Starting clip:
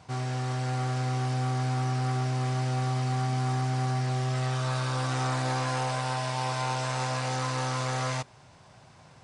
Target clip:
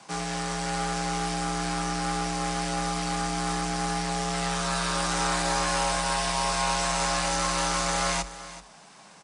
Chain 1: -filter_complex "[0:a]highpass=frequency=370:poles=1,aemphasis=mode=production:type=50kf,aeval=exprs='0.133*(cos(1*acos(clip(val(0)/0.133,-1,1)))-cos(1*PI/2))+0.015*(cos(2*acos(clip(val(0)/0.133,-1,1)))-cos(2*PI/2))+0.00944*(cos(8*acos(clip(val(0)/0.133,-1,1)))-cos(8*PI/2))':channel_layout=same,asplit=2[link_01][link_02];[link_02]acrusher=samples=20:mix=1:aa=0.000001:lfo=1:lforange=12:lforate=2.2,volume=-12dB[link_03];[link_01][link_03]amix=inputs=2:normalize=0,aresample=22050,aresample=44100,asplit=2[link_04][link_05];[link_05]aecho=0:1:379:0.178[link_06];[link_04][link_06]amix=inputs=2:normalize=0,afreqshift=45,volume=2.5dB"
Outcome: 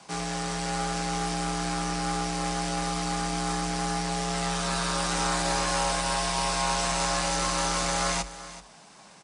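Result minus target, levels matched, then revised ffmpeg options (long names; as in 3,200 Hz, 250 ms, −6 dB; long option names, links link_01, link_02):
sample-and-hold swept by an LFO: distortion +7 dB
-filter_complex "[0:a]highpass=frequency=370:poles=1,aemphasis=mode=production:type=50kf,aeval=exprs='0.133*(cos(1*acos(clip(val(0)/0.133,-1,1)))-cos(1*PI/2))+0.015*(cos(2*acos(clip(val(0)/0.133,-1,1)))-cos(2*PI/2))+0.00944*(cos(8*acos(clip(val(0)/0.133,-1,1)))-cos(8*PI/2))':channel_layout=same,asplit=2[link_01][link_02];[link_02]acrusher=samples=7:mix=1:aa=0.000001:lfo=1:lforange=4.2:lforate=2.2,volume=-12dB[link_03];[link_01][link_03]amix=inputs=2:normalize=0,aresample=22050,aresample=44100,asplit=2[link_04][link_05];[link_05]aecho=0:1:379:0.178[link_06];[link_04][link_06]amix=inputs=2:normalize=0,afreqshift=45,volume=2.5dB"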